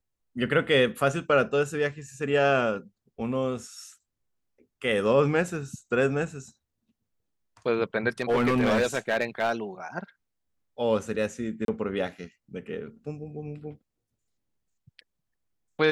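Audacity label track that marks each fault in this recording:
8.200000	9.520000	clipped -19 dBFS
11.650000	11.680000	dropout 32 ms

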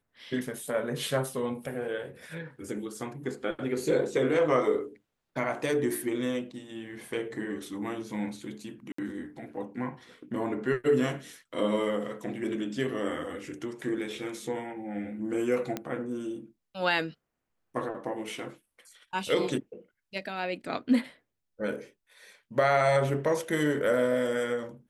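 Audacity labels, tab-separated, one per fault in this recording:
8.920000	8.980000	dropout 64 ms
15.770000	15.770000	pop -17 dBFS

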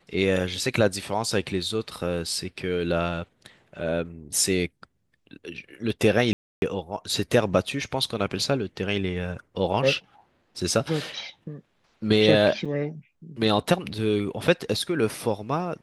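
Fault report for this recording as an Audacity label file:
6.330000	6.620000	dropout 291 ms
12.650000	12.660000	dropout 5.1 ms

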